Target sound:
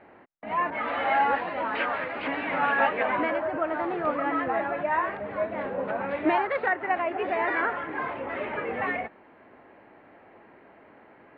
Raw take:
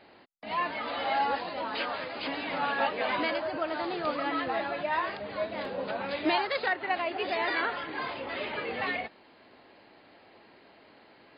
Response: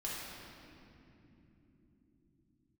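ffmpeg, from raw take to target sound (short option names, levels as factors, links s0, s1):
-filter_complex "[0:a]lowpass=f=2100:w=0.5412,lowpass=f=2100:w=1.3066,asettb=1/sr,asplit=3[s0][s1][s2];[s0]atrim=end=0.704[s3];[s1]atrim=start=0.7:end=3.03,asetpts=PTS-STARTPTS,afade=t=in:d=0.004:c=qsin,afade=t=out:st=2.326:d=0.004:c=qsin,adynamicequalizer=threshold=0.00708:dfrequency=1500:dqfactor=0.7:tfrequency=1500:tqfactor=0.7:attack=5:release=100:ratio=0.375:range=3.5:mode=boostabove:tftype=highshelf[s4];[s2]atrim=start=3.026[s5];[s3][s4]acrossfade=d=0.004:c1=hsin:c2=qsin[s6];[s6][s5]acrossfade=d=0.004:c1=qsin:c2=hsin,volume=1.58"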